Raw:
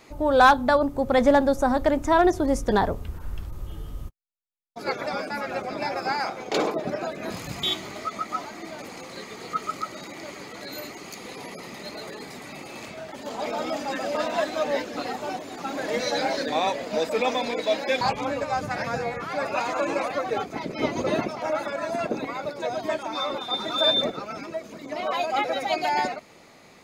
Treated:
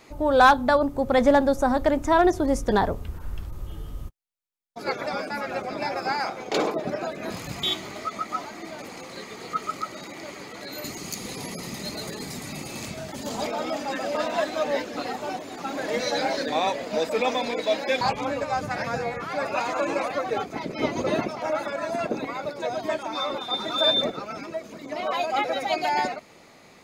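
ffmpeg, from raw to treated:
-filter_complex "[0:a]asettb=1/sr,asplit=3[a][b][c];[a]atrim=end=10.844[d];[b]atrim=start=10.84:end=13.47,asetpts=PTS-STARTPTS,afade=t=in:d=0.004:c=qsin,afade=t=out:st=2.626:d=0.004:c=qsin,bass=f=250:g=11,treble=f=4k:g=10[e];[c]atrim=start=13.466[f];[d][e]acrossfade=d=0.004:c1=hsin:c2=qsin[g];[g][f]acrossfade=d=0.004:c1=qsin:c2=hsin"

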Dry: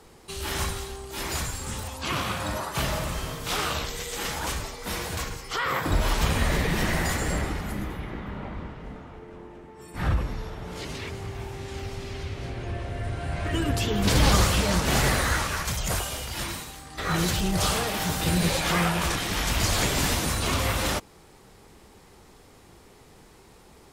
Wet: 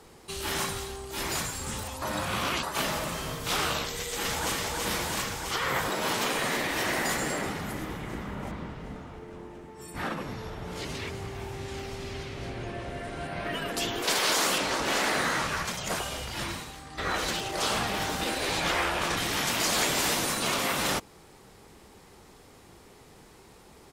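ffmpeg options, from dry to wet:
-filter_complex "[0:a]asplit=2[a][b];[b]afade=t=in:st=3.93:d=0.01,afade=t=out:st=4.55:d=0.01,aecho=0:1:330|660|990|1320|1650|1980|2310|2640|2970|3300|3630|3960:0.707946|0.566357|0.453085|0.362468|0.289975|0.23198|0.185584|0.148467|0.118774|0.0950189|0.0760151|0.0608121[c];[a][c]amix=inputs=2:normalize=0,asettb=1/sr,asplit=3[d][e][f];[d]atrim=end=8.474[g];[e]atrim=start=8.47:end=9.94,asetpts=PTS-STARTPTS,afade=t=in:d=0.004:c=qsin,afade=t=out:st=1.466:d=0.004:c=qsin,bass=f=250:g=2,treble=f=4k:g=6[h];[f]atrim=start=9.936[i];[g][h]acrossfade=d=0.004:c1=hsin:c2=qsin[j];[j][i]acrossfade=d=0.004:c1=qsin:c2=hsin,asettb=1/sr,asplit=3[k][l][m];[k]atrim=end=13.274[n];[l]atrim=start=13.27:end=13.69,asetpts=PTS-STARTPTS,afade=t=in:d=0.004:c=qsin,afade=t=out:st=0.416:d=0.004:c=qsin,equalizer=f=7.4k:w=2.4:g=-12.5[o];[m]atrim=start=13.686[p];[n][o]acrossfade=d=0.004:c1=hsin:c2=qsin[q];[q][p]acrossfade=d=0.004:c1=qsin:c2=hsin,asettb=1/sr,asplit=3[r][s][t];[r]atrim=end=14.584[u];[s]atrim=start=14.58:end=19.17,asetpts=PTS-STARTPTS,afade=t=in:d=0.004:c=qsin,afade=t=out:st=4.586:d=0.004:c=qsin,highshelf=f=8.3k:g=-11[v];[t]atrim=start=19.166[w];[u][v]acrossfade=d=0.004:c1=hsin:c2=qsin[x];[x][w]acrossfade=d=0.004:c1=qsin:c2=hsin,asplit=3[y][z][aa];[y]atrim=end=2.022[ab];[z]atrim=start=2.018:end=2.632,asetpts=PTS-STARTPTS,areverse[ac];[aa]atrim=start=2.628[ad];[ab][ac]acrossfade=d=0.004:c1=hsin:c2=hsin[ae];[ae][ad]acrossfade=d=0.004:c1=hsin:c2=hsin,afftfilt=real='re*lt(hypot(re,im),0.224)':imag='im*lt(hypot(re,im),0.224)':win_size=1024:overlap=0.75,lowshelf=f=65:g=-5.5"

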